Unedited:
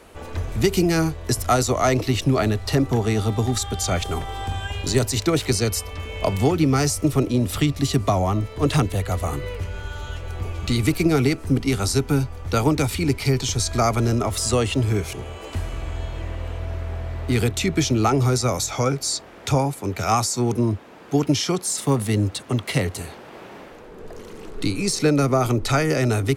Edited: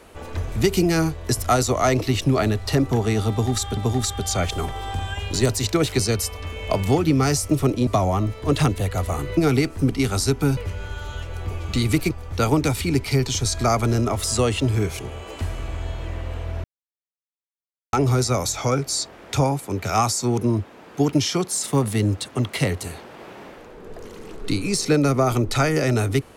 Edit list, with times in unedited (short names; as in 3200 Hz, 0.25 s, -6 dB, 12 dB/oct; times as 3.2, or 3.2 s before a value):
3.3–3.77 loop, 2 plays
7.4–8.01 cut
11.05–12.25 move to 9.51
16.78–18.07 mute